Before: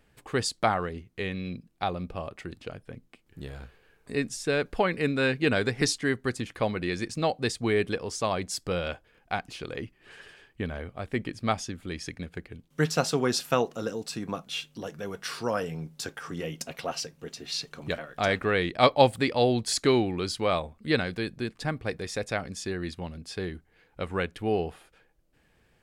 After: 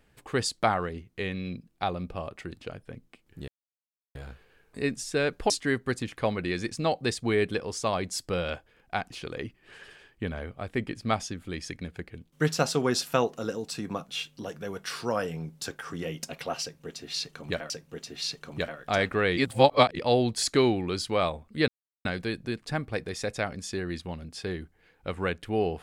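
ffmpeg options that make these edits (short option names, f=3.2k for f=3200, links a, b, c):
-filter_complex "[0:a]asplit=7[a][b][c][d][e][f][g];[a]atrim=end=3.48,asetpts=PTS-STARTPTS,afade=t=out:st=3.476:d=0.004:c=hsin,apad=pad_dur=0.67[h];[b]atrim=start=3.48:end=4.832,asetpts=PTS-STARTPTS,afade=t=in:d=0.004:c=hsin[i];[c]atrim=start=5.878:end=18.082[j];[d]atrim=start=16.998:end=18.672[k];[e]atrim=start=18.668:end=19.292,asetpts=PTS-STARTPTS,areverse[l];[f]atrim=start=19.288:end=20.98,asetpts=PTS-STARTPTS,afade=t=out:st=1.688:d=0.004:c=hsin,apad=pad_dur=0.37[m];[g]atrim=start=20.98,asetpts=PTS-STARTPTS,afade=t=in:d=0.004:c=hsin[n];[h][i]concat=n=2:v=0:a=1[o];[o][j]acrossfade=d=0.004:c1=hsin:c2=hsin[p];[p][k]acrossfade=d=0.004:c1=hsin:c2=hsin[q];[q][l]acrossfade=d=0.004:c1=hsin:c2=hsin[r];[m][n]concat=n=2:v=0:a=1[s];[r][s]acrossfade=d=0.004:c1=hsin:c2=hsin"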